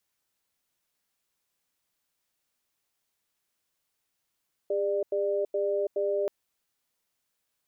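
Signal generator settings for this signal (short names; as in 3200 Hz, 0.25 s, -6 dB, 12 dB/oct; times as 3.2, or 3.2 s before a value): cadence 404 Hz, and 595 Hz, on 0.33 s, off 0.09 s, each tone -27.5 dBFS 1.58 s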